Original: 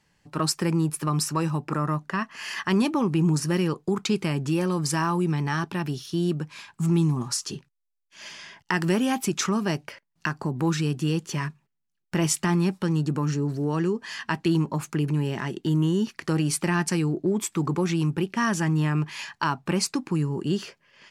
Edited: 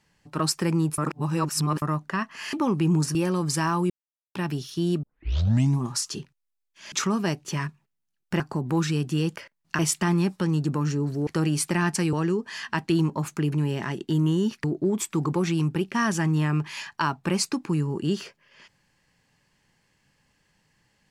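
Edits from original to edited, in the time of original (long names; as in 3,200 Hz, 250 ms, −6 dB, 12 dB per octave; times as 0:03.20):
0:00.98–0:01.82: reverse
0:02.53–0:02.87: remove
0:03.49–0:04.51: remove
0:05.26–0:05.71: silence
0:06.39: tape start 0.75 s
0:08.28–0:09.34: remove
0:09.87–0:10.30: swap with 0:11.26–0:12.21
0:16.20–0:17.06: move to 0:13.69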